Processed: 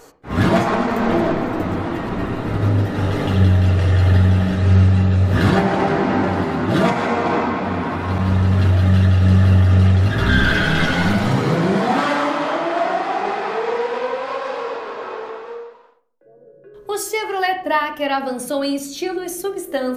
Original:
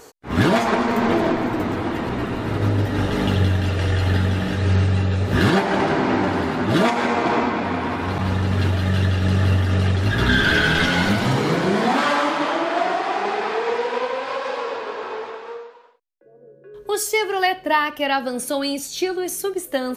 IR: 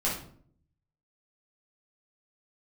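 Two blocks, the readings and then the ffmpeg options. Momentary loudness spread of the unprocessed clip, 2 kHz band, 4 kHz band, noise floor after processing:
8 LU, -0.5 dB, -2.0 dB, -46 dBFS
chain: -filter_complex "[0:a]asplit=2[a][b];[b]lowpass=2.2k[c];[1:a]atrim=start_sample=2205[d];[c][d]afir=irnorm=-1:irlink=0,volume=-11dB[e];[a][e]amix=inputs=2:normalize=0,volume=-2dB"

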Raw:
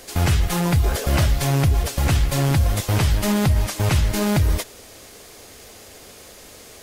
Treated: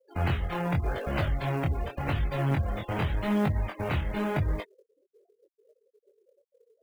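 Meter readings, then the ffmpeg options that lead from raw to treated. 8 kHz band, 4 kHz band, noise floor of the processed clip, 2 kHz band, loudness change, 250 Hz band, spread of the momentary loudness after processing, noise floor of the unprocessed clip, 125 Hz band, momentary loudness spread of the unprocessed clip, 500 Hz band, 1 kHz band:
under -25 dB, -15.0 dB, -79 dBFS, -7.0 dB, -9.5 dB, -7.5 dB, 4 LU, -44 dBFS, -10.0 dB, 2 LU, -6.0 dB, -6.0 dB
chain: -filter_complex "[0:a]lowpass=2.9k,lowshelf=f=170:g=-6.5,afftfilt=real='re*gte(hypot(re,im),0.0282)':imag='im*gte(hypot(re,im),0.0282)':win_size=1024:overlap=0.75,flanger=delay=19.5:depth=5.6:speed=0.87,acrossover=split=210[a][b];[b]acrusher=bits=6:mode=log:mix=0:aa=0.000001[c];[a][c]amix=inputs=2:normalize=0,volume=-2.5dB"

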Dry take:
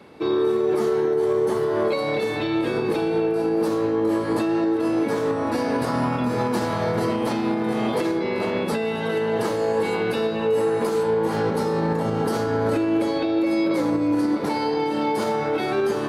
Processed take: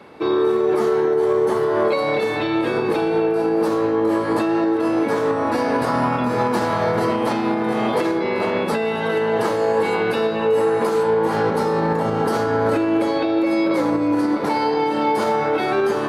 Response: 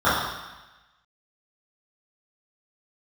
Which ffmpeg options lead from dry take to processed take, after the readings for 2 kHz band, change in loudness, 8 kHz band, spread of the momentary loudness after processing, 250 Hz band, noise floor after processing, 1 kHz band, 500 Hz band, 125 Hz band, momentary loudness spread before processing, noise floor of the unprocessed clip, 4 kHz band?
+4.5 dB, +3.0 dB, +0.5 dB, 3 LU, +2.0 dB, -22 dBFS, +5.5 dB, +3.5 dB, +0.5 dB, 3 LU, -25 dBFS, +2.0 dB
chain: -af "equalizer=f=1.1k:w=0.45:g=6"

